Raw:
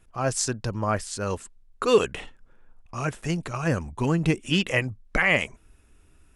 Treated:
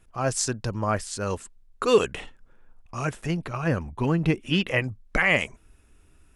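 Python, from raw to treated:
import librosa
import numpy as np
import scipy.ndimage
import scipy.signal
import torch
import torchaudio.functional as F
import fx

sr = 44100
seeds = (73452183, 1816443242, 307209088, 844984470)

y = fx.peak_eq(x, sr, hz=7700.0, db=-13.0, octaves=0.88, at=(3.26, 4.84))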